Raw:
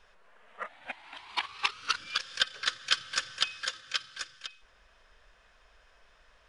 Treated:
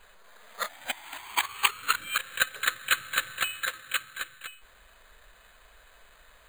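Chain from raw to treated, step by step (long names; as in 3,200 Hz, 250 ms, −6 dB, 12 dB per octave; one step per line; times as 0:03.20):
high-shelf EQ 2,800 Hz +10.5 dB
bad sample-rate conversion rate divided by 8×, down filtered, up hold
level +4.5 dB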